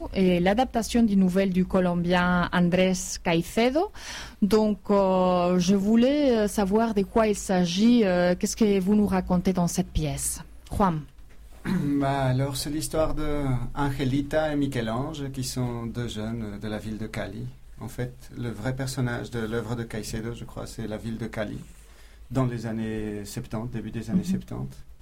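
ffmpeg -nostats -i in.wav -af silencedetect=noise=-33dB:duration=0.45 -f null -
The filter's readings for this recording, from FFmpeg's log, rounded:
silence_start: 11.01
silence_end: 11.65 | silence_duration: 0.64
silence_start: 21.62
silence_end: 22.31 | silence_duration: 0.69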